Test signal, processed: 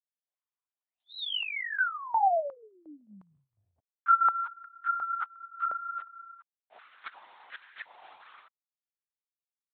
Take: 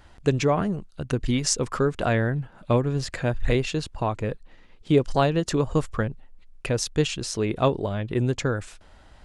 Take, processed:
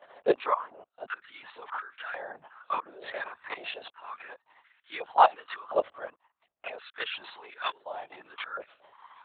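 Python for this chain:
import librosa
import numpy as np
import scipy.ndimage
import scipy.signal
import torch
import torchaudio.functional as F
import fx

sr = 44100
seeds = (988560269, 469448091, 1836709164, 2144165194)

y = fx.high_shelf(x, sr, hz=2900.0, db=-3.5)
y = fx.level_steps(y, sr, step_db=19)
y = fx.tremolo_shape(y, sr, shape='saw_down', hz=1.0, depth_pct=45)
y = fx.chorus_voices(y, sr, voices=4, hz=0.37, base_ms=19, depth_ms=3.0, mix_pct=70)
y = fx.lpc_vocoder(y, sr, seeds[0], excitation='whisper', order=10)
y = fx.filter_held_highpass(y, sr, hz=2.8, low_hz=600.0, high_hz=1600.0)
y = y * librosa.db_to_amplitude(6.0)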